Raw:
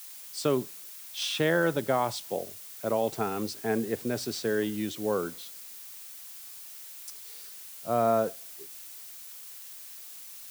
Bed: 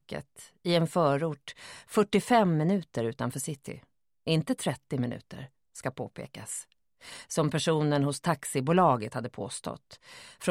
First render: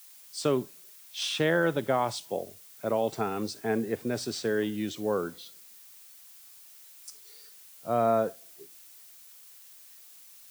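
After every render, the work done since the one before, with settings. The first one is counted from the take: noise print and reduce 7 dB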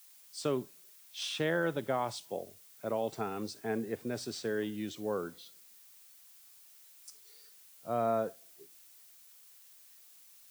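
trim -6 dB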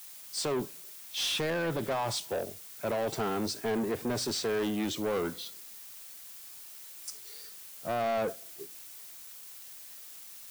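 peak limiter -25.5 dBFS, peak gain reduction 7 dB; waveshaping leveller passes 3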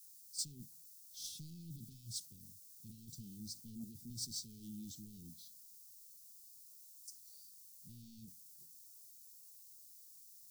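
inverse Chebyshev band-stop 540–1900 Hz, stop band 60 dB; gate -34 dBFS, range -11 dB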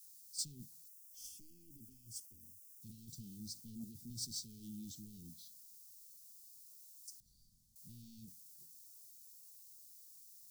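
0.88–2.82 s: static phaser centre 790 Hz, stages 8; 7.20–7.76 s: tilt EQ -4.5 dB/octave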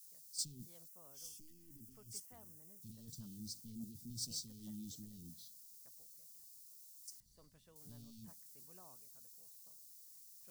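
add bed -41 dB

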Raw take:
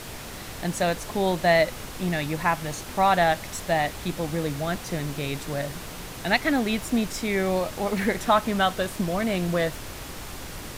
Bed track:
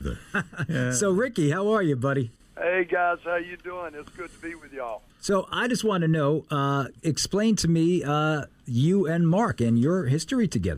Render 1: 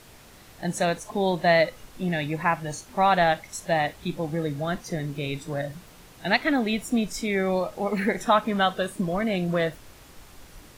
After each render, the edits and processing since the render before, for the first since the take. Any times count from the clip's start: noise print and reduce 12 dB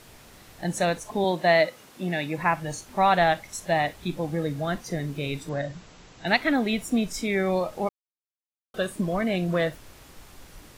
1.24–2.38 s: high-pass 170 Hz; 5.49–6.27 s: brick-wall FIR low-pass 7.9 kHz; 7.89–8.74 s: mute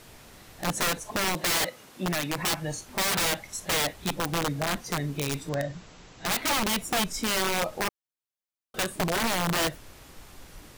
integer overflow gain 20.5 dB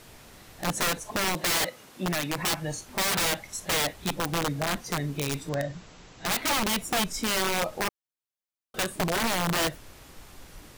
no audible change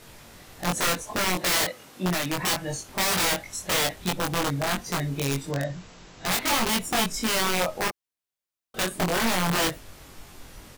doubling 22 ms -2 dB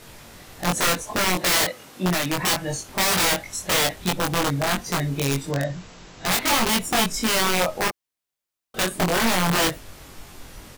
trim +3.5 dB

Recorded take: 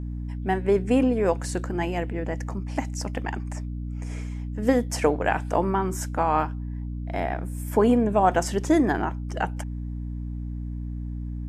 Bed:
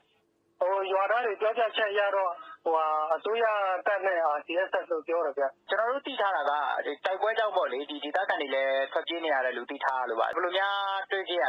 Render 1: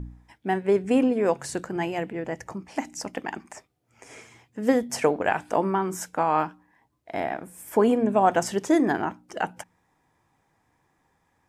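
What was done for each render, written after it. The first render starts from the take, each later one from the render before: de-hum 60 Hz, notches 5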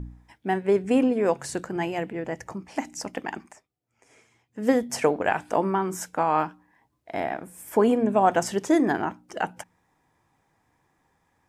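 3.43–4.62 s: dip -12 dB, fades 0.15 s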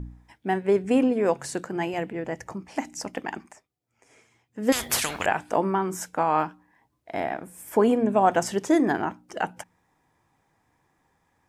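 1.49–1.94 s: high-pass 130 Hz; 4.72–5.26 s: spectrum-flattening compressor 10:1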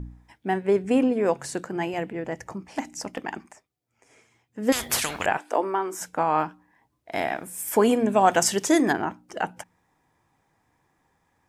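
2.14–3.18 s: hard clipper -20 dBFS; 5.37–6.01 s: high-pass 300 Hz 24 dB/octave; 7.12–8.93 s: treble shelf 2.2 kHz +11.5 dB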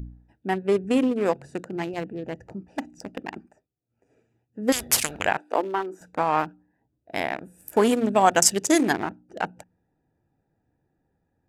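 local Wiener filter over 41 samples; treble shelf 2.3 kHz +7.5 dB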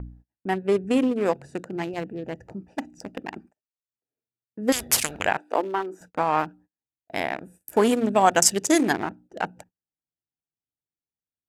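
gate -49 dBFS, range -31 dB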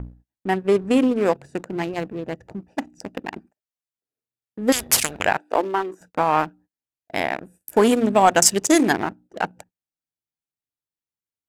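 waveshaping leveller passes 1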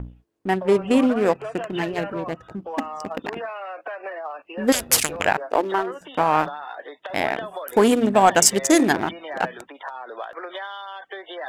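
add bed -6 dB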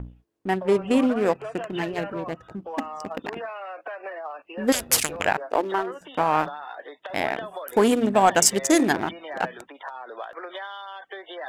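trim -2.5 dB

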